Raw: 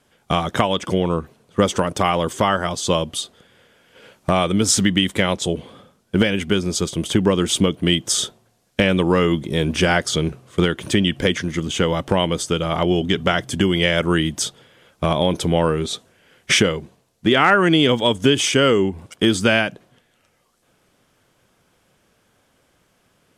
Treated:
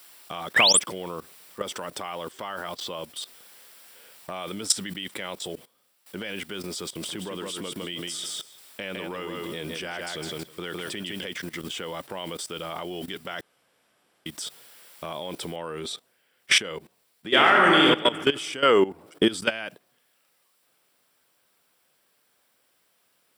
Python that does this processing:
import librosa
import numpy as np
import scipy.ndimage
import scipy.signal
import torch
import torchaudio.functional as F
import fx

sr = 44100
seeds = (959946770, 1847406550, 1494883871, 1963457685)

y = fx.spec_paint(x, sr, seeds[0], shape='rise', start_s=0.55, length_s=0.25, low_hz=1500.0, high_hz=11000.0, level_db=-15.0)
y = fx.lowpass(y, sr, hz=fx.line((2.31, 6700.0), (3.16, 2900.0)), slope=12, at=(2.31, 3.16), fade=0.02)
y = fx.echo_feedback(y, sr, ms=159, feedback_pct=24, wet_db=-6, at=(7.01, 11.25), fade=0.02)
y = fx.noise_floor_step(y, sr, seeds[1], at_s=15.56, before_db=-45, after_db=-61, tilt_db=0.0)
y = fx.reverb_throw(y, sr, start_s=17.28, length_s=0.57, rt60_s=1.8, drr_db=-2.0)
y = fx.peak_eq(y, sr, hz=fx.line((18.64, 1100.0), (19.26, 250.0)), db=10.0, octaves=2.8, at=(18.64, 19.26), fade=0.02)
y = fx.edit(y, sr, fx.fade_down_up(start_s=5.43, length_s=0.8, db=-16.0, fade_s=0.3),
    fx.room_tone_fill(start_s=13.41, length_s=0.85), tone=tone)
y = fx.highpass(y, sr, hz=570.0, slope=6)
y = fx.notch(y, sr, hz=6500.0, q=5.5)
y = fx.level_steps(y, sr, step_db=17)